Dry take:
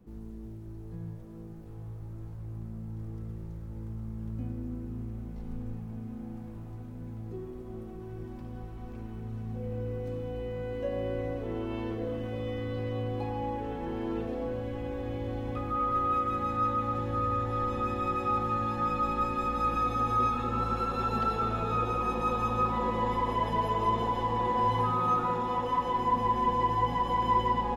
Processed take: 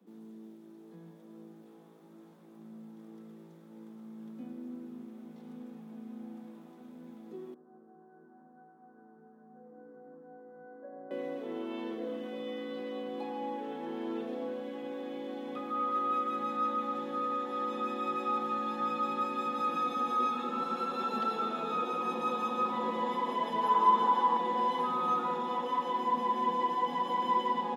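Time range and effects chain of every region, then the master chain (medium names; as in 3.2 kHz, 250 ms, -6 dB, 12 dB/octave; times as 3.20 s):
7.54–11.11 s: steep low-pass 1.7 kHz 72 dB/octave + feedback comb 150 Hz, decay 0.17 s, mix 90%
23.63–24.37 s: high-order bell 1.1 kHz +8 dB 1.3 oct + band-stop 690 Hz, Q 6
whole clip: steep high-pass 180 Hz 72 dB/octave; peaking EQ 3.5 kHz +7.5 dB 0.25 oct; trim -3 dB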